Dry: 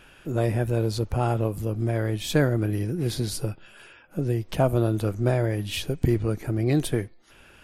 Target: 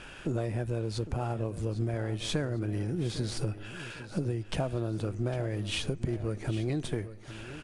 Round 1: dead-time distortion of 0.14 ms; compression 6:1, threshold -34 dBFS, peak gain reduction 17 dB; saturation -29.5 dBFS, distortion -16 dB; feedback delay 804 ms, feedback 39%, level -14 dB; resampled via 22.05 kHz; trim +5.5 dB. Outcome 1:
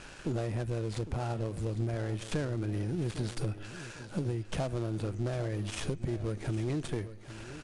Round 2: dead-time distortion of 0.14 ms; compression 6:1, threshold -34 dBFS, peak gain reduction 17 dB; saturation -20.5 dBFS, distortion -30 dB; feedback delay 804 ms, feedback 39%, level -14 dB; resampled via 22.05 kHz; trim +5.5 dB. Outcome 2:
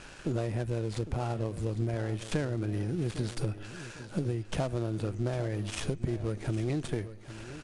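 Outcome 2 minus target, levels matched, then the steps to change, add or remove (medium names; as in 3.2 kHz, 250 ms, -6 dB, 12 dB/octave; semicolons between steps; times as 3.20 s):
dead-time distortion: distortion +6 dB
change: dead-time distortion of 0.035 ms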